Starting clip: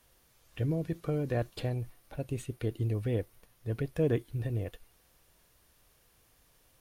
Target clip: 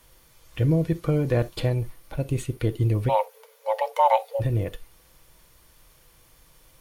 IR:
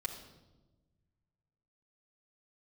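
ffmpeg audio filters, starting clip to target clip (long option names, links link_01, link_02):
-filter_complex "[0:a]asplit=3[link_01][link_02][link_03];[link_01]afade=type=out:start_time=3.08:duration=0.02[link_04];[link_02]afreqshift=430,afade=type=in:start_time=3.08:duration=0.02,afade=type=out:start_time=4.39:duration=0.02[link_05];[link_03]afade=type=in:start_time=4.39:duration=0.02[link_06];[link_04][link_05][link_06]amix=inputs=3:normalize=0,asplit=2[link_07][link_08];[1:a]atrim=start_sample=2205,atrim=end_sample=3087[link_09];[link_08][link_09]afir=irnorm=-1:irlink=0,volume=-4.5dB[link_10];[link_07][link_10]amix=inputs=2:normalize=0,volume=6dB"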